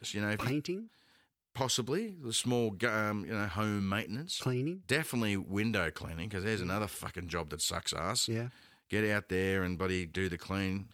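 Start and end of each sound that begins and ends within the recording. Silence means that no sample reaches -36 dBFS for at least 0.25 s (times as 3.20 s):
1.56–8.48 s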